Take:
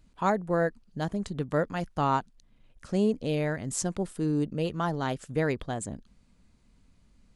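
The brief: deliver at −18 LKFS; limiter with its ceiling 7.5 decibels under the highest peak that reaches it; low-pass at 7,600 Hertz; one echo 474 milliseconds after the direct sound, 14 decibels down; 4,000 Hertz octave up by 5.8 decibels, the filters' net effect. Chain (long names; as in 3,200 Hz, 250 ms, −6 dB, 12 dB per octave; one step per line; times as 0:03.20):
low-pass filter 7,600 Hz
parametric band 4,000 Hz +8 dB
brickwall limiter −20 dBFS
single-tap delay 474 ms −14 dB
level +13.5 dB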